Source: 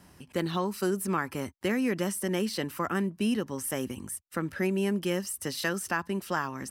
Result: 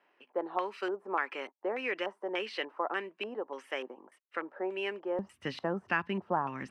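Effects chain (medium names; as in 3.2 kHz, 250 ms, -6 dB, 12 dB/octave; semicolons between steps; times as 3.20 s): LFO low-pass square 1.7 Hz 840–2600 Hz; gate -51 dBFS, range -6 dB; high-pass 390 Hz 24 dB/octave, from 5.19 s 84 Hz; tape noise reduction on one side only decoder only; trim -3 dB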